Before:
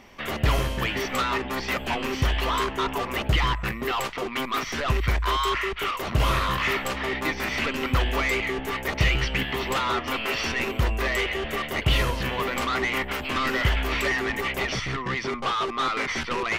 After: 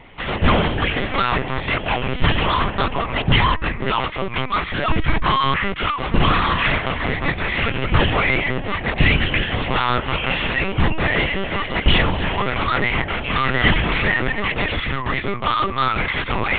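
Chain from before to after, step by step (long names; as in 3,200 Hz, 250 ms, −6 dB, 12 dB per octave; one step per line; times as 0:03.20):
linear-prediction vocoder at 8 kHz pitch kept
level +6.5 dB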